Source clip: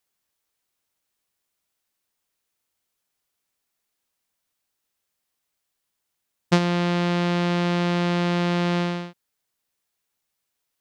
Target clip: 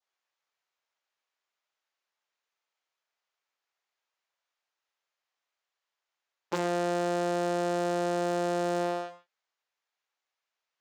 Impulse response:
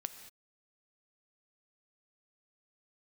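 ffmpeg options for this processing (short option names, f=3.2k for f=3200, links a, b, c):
-filter_complex "[0:a]aresample=16000,aeval=exprs='0.501*sin(PI/2*3.98*val(0)/0.501)':c=same,aresample=44100,agate=range=-33dB:threshold=-2dB:ratio=3:detection=peak,asplit=2[a][b];[b]highpass=f=720:p=1,volume=25dB,asoftclip=type=tanh:threshold=-14.5dB[c];[a][c]amix=inputs=2:normalize=0,lowpass=f=1.7k:p=1,volume=-6dB,asplit=2[d][e];[e]asoftclip=type=hard:threshold=-27dB,volume=-12dB[f];[d][f]amix=inputs=2:normalize=0,highpass=460[g];[1:a]atrim=start_sample=2205,afade=t=out:st=0.19:d=0.01,atrim=end_sample=8820[h];[g][h]afir=irnorm=-1:irlink=0,adynamicequalizer=threshold=0.00316:dfrequency=2100:dqfactor=1.3:tfrequency=2100:tqfactor=1.3:attack=5:release=100:ratio=0.375:range=2.5:mode=cutabove:tftype=bell"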